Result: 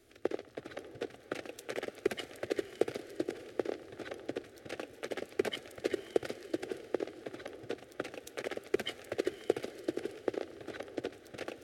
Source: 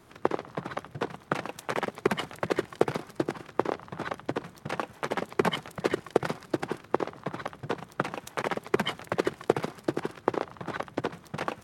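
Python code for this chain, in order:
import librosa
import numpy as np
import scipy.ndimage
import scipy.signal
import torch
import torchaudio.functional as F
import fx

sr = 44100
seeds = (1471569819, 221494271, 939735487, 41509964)

y = fx.fixed_phaser(x, sr, hz=410.0, stages=4)
y = fx.echo_diffused(y, sr, ms=578, feedback_pct=41, wet_db=-14.0)
y = y * 10.0 ** (-5.0 / 20.0)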